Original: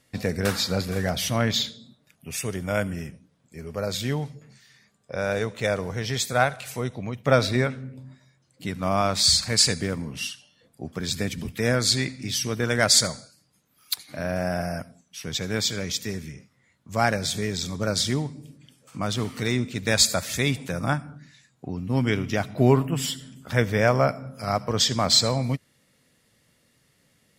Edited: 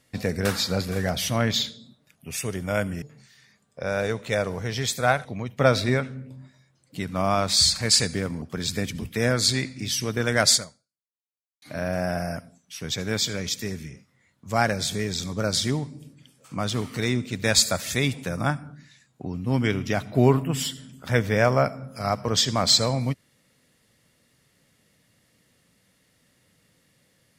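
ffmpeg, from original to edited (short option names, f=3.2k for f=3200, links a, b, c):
-filter_complex "[0:a]asplit=5[a][b][c][d][e];[a]atrim=end=3.022[f];[b]atrim=start=4.338:end=6.572[g];[c]atrim=start=6.918:end=10.092[h];[d]atrim=start=10.848:end=14.05,asetpts=PTS-STARTPTS,afade=t=out:st=2.102:d=1.1:c=exp[i];[e]atrim=start=14.05,asetpts=PTS-STARTPTS,afade=t=in:d=0.004:c=hsin[j];[f][g]acrossfade=d=0.004:c1=hsin:c2=hsin[k];[k][h]acrossfade=d=0.004:c1=hsin:c2=hsin[l];[i][j]concat=n=2:v=0:a=1[m];[l][m]acrossfade=d=0.004:c1=hsin:c2=hsin"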